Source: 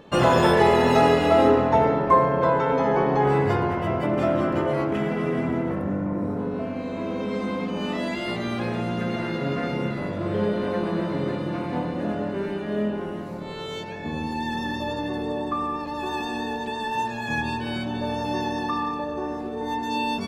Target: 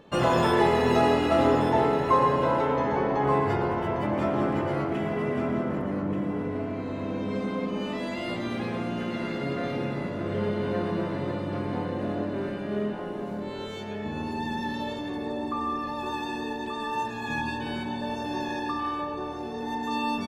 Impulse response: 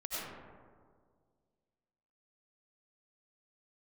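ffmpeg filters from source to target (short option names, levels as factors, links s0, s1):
-filter_complex "[0:a]aecho=1:1:1181:0.376,asplit=2[s0][s1];[1:a]atrim=start_sample=2205,asetrate=36162,aresample=44100[s2];[s1][s2]afir=irnorm=-1:irlink=0,volume=0.376[s3];[s0][s3]amix=inputs=2:normalize=0,volume=0.473"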